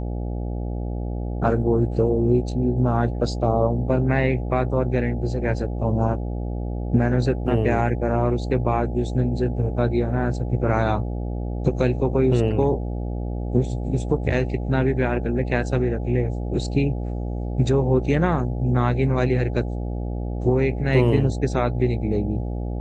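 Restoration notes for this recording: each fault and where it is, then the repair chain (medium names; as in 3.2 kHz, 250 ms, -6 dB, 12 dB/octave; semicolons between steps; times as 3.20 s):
buzz 60 Hz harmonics 14 -27 dBFS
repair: de-hum 60 Hz, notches 14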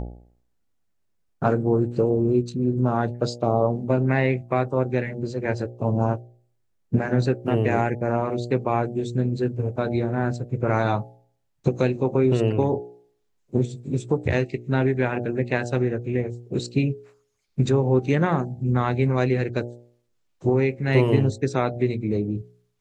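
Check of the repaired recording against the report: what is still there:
nothing left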